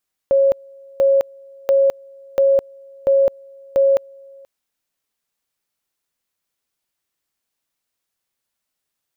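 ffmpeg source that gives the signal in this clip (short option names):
-f lavfi -i "aevalsrc='pow(10,(-10.5-28.5*gte(mod(t,0.69),0.21))/20)*sin(2*PI*548*t)':d=4.14:s=44100"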